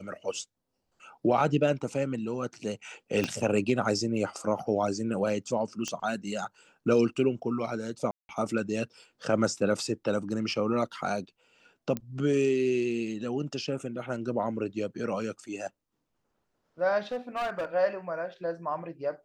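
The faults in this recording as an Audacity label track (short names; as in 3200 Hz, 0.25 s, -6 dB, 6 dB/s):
3.240000	3.240000	pop -14 dBFS
5.880000	5.880000	pop -19 dBFS
8.110000	8.290000	gap 0.181 s
11.970000	11.970000	pop -18 dBFS
17.120000	17.650000	clipped -27.5 dBFS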